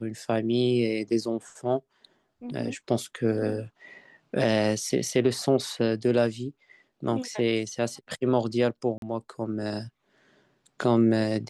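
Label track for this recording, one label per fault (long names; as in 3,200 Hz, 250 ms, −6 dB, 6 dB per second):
8.980000	9.020000	drop-out 42 ms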